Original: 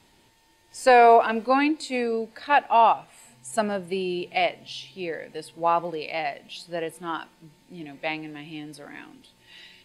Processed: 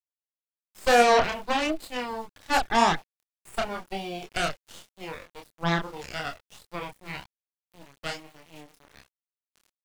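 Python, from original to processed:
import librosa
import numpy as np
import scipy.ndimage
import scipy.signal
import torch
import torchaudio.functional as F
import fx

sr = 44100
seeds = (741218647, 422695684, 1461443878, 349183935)

y = fx.cheby_harmonics(x, sr, harmonics=(3, 4, 8), levels_db=(-15, -19, -16), full_scale_db=-7.5)
y = np.where(np.abs(y) >= 10.0 ** (-42.5 / 20.0), y, 0.0)
y = fx.chorus_voices(y, sr, voices=2, hz=1.0, base_ms=27, depth_ms=3.0, mix_pct=40)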